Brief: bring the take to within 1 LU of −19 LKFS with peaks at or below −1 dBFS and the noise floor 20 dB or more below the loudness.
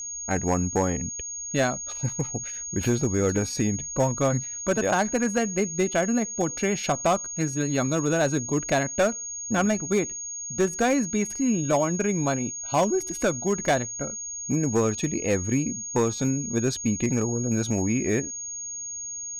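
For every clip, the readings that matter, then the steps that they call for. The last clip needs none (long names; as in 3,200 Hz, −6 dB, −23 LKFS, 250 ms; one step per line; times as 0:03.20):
share of clipped samples 0.9%; peaks flattened at −15.5 dBFS; interfering tone 6,600 Hz; level of the tone −32 dBFS; integrated loudness −25.5 LKFS; sample peak −15.5 dBFS; target loudness −19.0 LKFS
→ clipped peaks rebuilt −15.5 dBFS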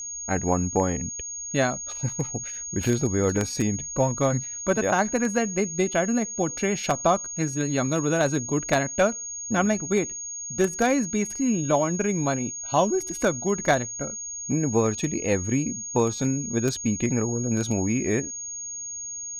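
share of clipped samples 0.0%; interfering tone 6,600 Hz; level of the tone −32 dBFS
→ notch filter 6,600 Hz, Q 30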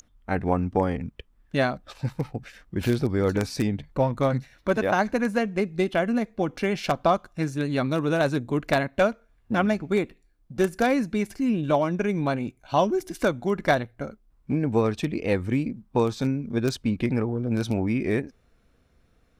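interfering tone none found; integrated loudness −26.0 LKFS; sample peak −6.0 dBFS; target loudness −19.0 LKFS
→ level +7 dB
brickwall limiter −1 dBFS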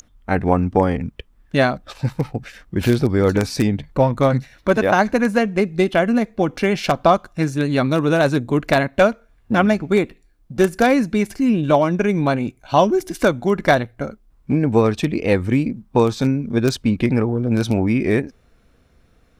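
integrated loudness −19.0 LKFS; sample peak −1.0 dBFS; background noise floor −57 dBFS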